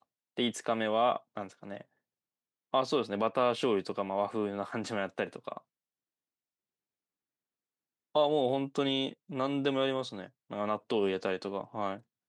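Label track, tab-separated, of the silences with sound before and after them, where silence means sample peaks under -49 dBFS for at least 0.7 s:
1.820000	2.730000	silence
5.580000	8.150000	silence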